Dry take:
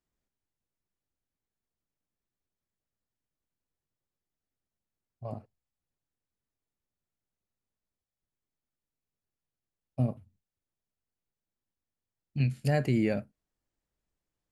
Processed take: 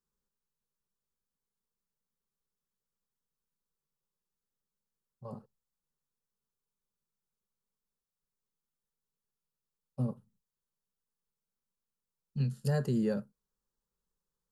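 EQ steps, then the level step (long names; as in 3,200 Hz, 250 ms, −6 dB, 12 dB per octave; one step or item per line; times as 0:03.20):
phaser with its sweep stopped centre 450 Hz, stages 8
0.0 dB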